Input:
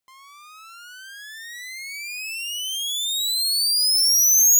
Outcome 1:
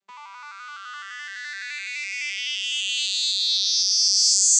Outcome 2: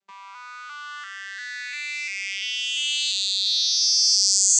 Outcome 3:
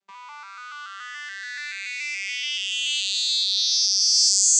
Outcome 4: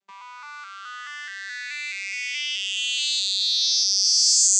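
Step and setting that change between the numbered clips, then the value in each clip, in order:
arpeggiated vocoder, a note every: 85, 346, 143, 213 ms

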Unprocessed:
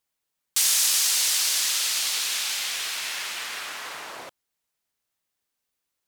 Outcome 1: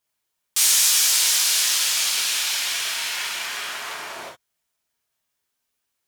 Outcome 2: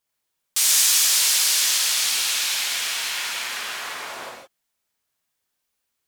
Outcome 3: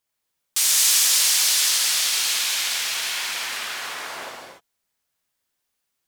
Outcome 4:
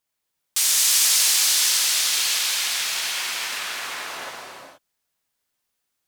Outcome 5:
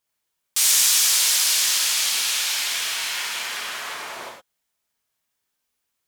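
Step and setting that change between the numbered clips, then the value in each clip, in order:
non-linear reverb, gate: 80, 190, 320, 500, 130 ms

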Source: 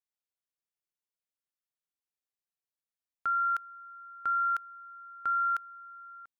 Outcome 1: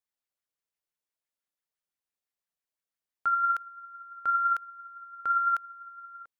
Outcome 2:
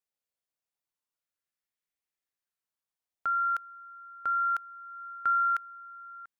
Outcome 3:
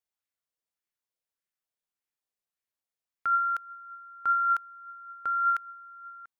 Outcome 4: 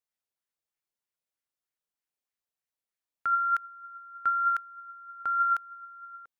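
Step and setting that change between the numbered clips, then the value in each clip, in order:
LFO bell, rate: 5.9, 0.26, 1.7, 3.2 Hz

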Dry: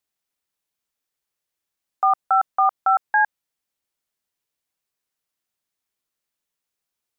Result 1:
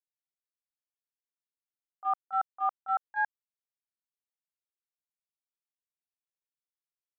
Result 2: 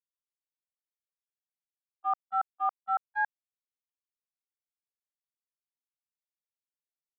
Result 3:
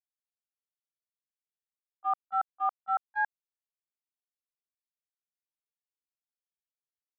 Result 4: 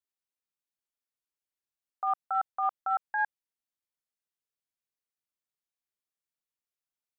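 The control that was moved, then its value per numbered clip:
gate, range: -27, -56, -43, -13 dB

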